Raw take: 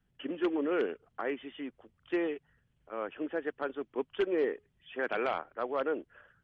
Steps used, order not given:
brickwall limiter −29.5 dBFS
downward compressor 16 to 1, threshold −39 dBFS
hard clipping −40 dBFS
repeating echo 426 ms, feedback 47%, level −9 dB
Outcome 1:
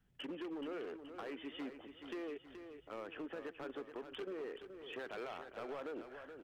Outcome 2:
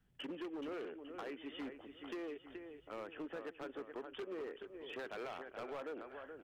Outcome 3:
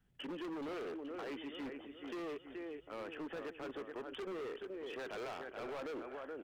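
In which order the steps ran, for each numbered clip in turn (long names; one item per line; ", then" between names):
brickwall limiter, then downward compressor, then hard clipping, then repeating echo
downward compressor, then repeating echo, then hard clipping, then brickwall limiter
brickwall limiter, then repeating echo, then hard clipping, then downward compressor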